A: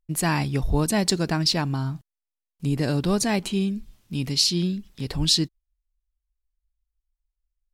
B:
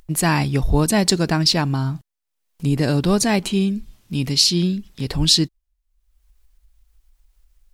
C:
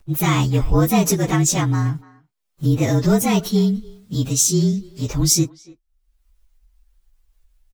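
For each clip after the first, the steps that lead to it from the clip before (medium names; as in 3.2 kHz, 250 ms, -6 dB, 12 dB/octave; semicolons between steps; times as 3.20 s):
upward compressor, threshold -43 dBFS; trim +5 dB
frequency axis rescaled in octaves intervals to 112%; speakerphone echo 290 ms, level -20 dB; trim +3 dB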